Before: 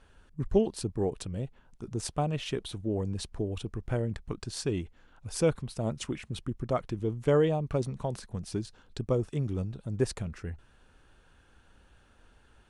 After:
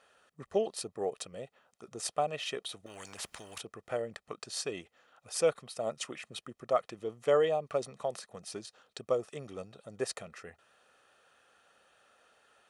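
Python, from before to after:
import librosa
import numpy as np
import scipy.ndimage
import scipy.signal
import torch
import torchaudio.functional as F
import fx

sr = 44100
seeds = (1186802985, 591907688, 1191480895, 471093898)

y = scipy.signal.sosfilt(scipy.signal.butter(2, 420.0, 'highpass', fs=sr, output='sos'), x)
y = y + 0.48 * np.pad(y, (int(1.6 * sr / 1000.0), 0))[:len(y)]
y = fx.spectral_comp(y, sr, ratio=4.0, at=(2.86, 3.61))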